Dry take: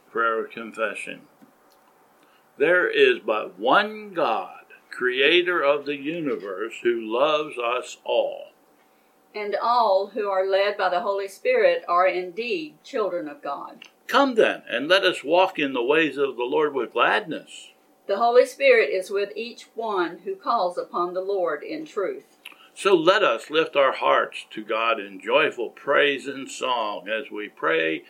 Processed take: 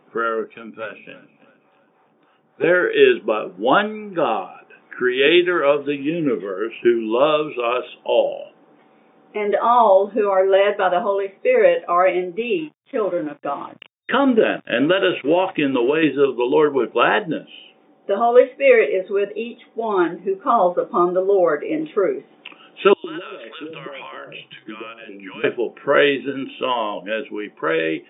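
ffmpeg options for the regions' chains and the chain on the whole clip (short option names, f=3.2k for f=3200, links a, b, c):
-filter_complex "[0:a]asettb=1/sr,asplit=3[a][b][c];[a]atrim=end=0.444[d];[b]atrim=start=0.44:end=2.64,asetpts=PTS-STARTPTS,afade=t=in:d=0.004:c=qsin,afade=t=out:st=2.196:d=0.004:c=qsin,acrossover=split=480[e][f];[e]aeval=exprs='val(0)*(1-0.7/2+0.7/2*cos(2*PI*3.5*n/s))':c=same[g];[f]aeval=exprs='val(0)*(1-0.7/2-0.7/2*cos(2*PI*3.5*n/s))':c=same[h];[g][h]amix=inputs=2:normalize=0,aeval=exprs='(tanh(14.1*val(0)+0.4)-tanh(0.4))/14.1':c=same,aecho=1:1:327|654|981:0.106|0.0445|0.0187,atrim=end_sample=97020[i];[c]atrim=start=2.636[j];[d][i]acrossfade=d=0.004:c1=hsin:c2=qsin[k];[k][j]acrossfade=d=0.004:c1=qsin:c2=hsin,asettb=1/sr,asplit=3[l][m][n];[l]atrim=end=12.584[o];[m]atrim=start=12.58:end=16.03,asetpts=PTS-STARTPTS,afade=t=in:d=0.004:c=qsin,afade=t=out:st=3.446:d=0.004:c=qsin,lowpass=f=3.6k:w=0.5412,lowpass=f=3.6k:w=1.3066,acompressor=threshold=-20dB:ratio=6:attack=3.2:release=140:knee=1:detection=peak,aeval=exprs='sgn(val(0))*max(abs(val(0))-0.00531,0)':c=same[p];[n]atrim=start=16.026[q];[o][p]acrossfade=d=0.004:c1=hsin:c2=qsin[r];[r][q]acrossfade=d=0.004:c1=qsin:c2=hsin,asettb=1/sr,asplit=3[s][t][u];[s]atrim=end=22.934[v];[t]atrim=start=22.93:end=25.44,asetpts=PTS-STARTPTS,afade=t=in:d=0.004:c=qsin,afade=t=out:st=2.506:d=0.004:c=qsin,equalizer=f=620:w=0.53:g=-6.5,acompressor=threshold=-33dB:ratio=12:attack=3.2:release=140:knee=1:detection=peak,acrossover=split=180|690[w][x][y];[x]adelay=110[z];[w]adelay=770[aa];[aa][z][y]amix=inputs=3:normalize=0,atrim=end_sample=110691[ab];[u]atrim=start=25.436[ac];[v][ab]acrossfade=d=0.004:c1=hsin:c2=qsin[ad];[ad][ac]acrossfade=d=0.004:c1=qsin:c2=hsin,lowshelf=f=400:g=9,afftfilt=real='re*between(b*sr/4096,110,3700)':imag='im*between(b*sr/4096,110,3700)':win_size=4096:overlap=0.75,dynaudnorm=f=450:g=7:m=11.5dB,volume=-1dB"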